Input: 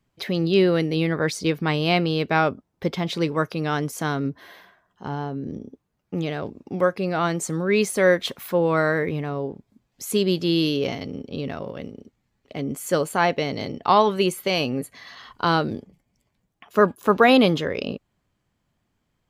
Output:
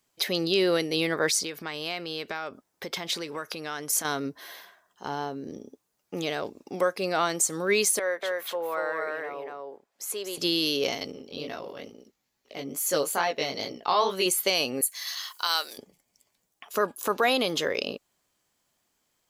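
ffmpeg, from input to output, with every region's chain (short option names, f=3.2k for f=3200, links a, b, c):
-filter_complex "[0:a]asettb=1/sr,asplit=3[a][b][c];[a]atrim=end=1.304[d];[b]atrim=start=1.3:end=4.05,asetpts=PTS-STARTPTS,afade=t=in:d=0.004:c=qsin,afade=t=out:st=2.746:d=0.004:c=qsin,equalizer=f=1.7k:w=1.4:g=4.5,acompressor=threshold=-28dB:ratio=10:attack=3.2:release=140:knee=1:detection=peak[e];[c]atrim=start=4.046[f];[d][e]acrossfade=d=0.004:c1=hsin:c2=qsin[g];[g][f]acrossfade=d=0.004:c1=qsin:c2=hsin,asettb=1/sr,asplit=3[h][i][j];[h]atrim=end=7.994[k];[i]atrim=start=7.99:end=10.38,asetpts=PTS-STARTPTS,afade=t=in:d=0.004:c=qsin,afade=t=out:st=2.386:d=0.004:c=qsin,acrossover=split=420 2200:gain=0.126 1 0.224[l][m][n];[l][m][n]amix=inputs=3:normalize=0,aecho=1:1:236:0.708,atrim=end_sample=105399,acompressor=threshold=-37dB:ratio=1.5:attack=3.2:release=140:knee=1:detection=peak[o];[j]atrim=start=10.376[p];[k][o]acrossfade=d=0.004:c1=hsin:c2=qsin[q];[q][p]acrossfade=d=0.004:c1=qsin:c2=hsin,asettb=1/sr,asplit=3[r][s][t];[r]atrim=end=11.124[u];[s]atrim=start=11.12:end=14.26,asetpts=PTS-STARTPTS,afade=t=in:d=0.004:c=qsin,afade=t=out:st=3.136:d=0.004:c=qsin,flanger=delay=15.5:depth=7.3:speed=2.3,equalizer=f=8.4k:t=o:w=0.27:g=-8.5[v];[t]atrim=start=14.256[w];[u][v]acrossfade=d=0.004:c1=hsin:c2=qsin[x];[x][w]acrossfade=d=0.004:c1=qsin:c2=hsin,asettb=1/sr,asplit=3[y][z][aa];[y]atrim=end=14.814[ab];[z]atrim=start=14.81:end=15.78,asetpts=PTS-STARTPTS,afade=t=in:d=0.004:c=qsin,afade=t=out:st=0.966:d=0.004:c=qsin,highpass=890,aemphasis=mode=production:type=75fm[ac];[aa]atrim=start=15.776[ad];[ab][ac]acrossfade=d=0.004:c1=hsin:c2=qsin[ae];[ae][ad]acrossfade=d=0.004:c1=qsin:c2=hsin,bass=f=250:g=-15,treble=f=4k:g=12,alimiter=limit=-13dB:level=0:latency=1:release=180"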